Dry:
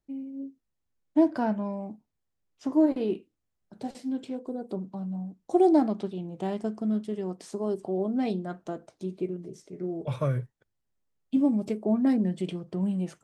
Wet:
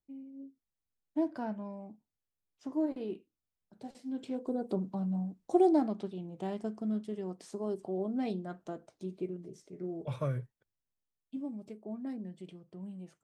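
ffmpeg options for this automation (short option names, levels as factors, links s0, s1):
-af "volume=1.06,afade=t=in:st=4.03:d=0.48:silence=0.298538,afade=t=out:st=5.18:d=0.57:silence=0.473151,afade=t=out:st=10.23:d=1.18:silence=0.316228"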